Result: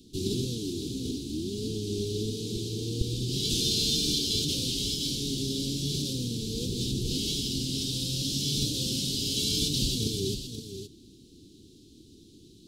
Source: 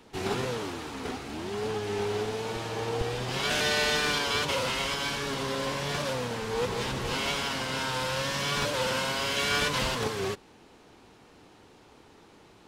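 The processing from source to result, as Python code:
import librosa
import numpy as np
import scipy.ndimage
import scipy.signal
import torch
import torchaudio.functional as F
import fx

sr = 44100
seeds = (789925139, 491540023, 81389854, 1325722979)

p1 = scipy.signal.sosfilt(scipy.signal.ellip(3, 1.0, 40, [340.0, 3700.0], 'bandstop', fs=sr, output='sos'), x)
p2 = p1 + fx.echo_single(p1, sr, ms=520, db=-9.0, dry=0)
y = F.gain(torch.from_numpy(p2), 5.0).numpy()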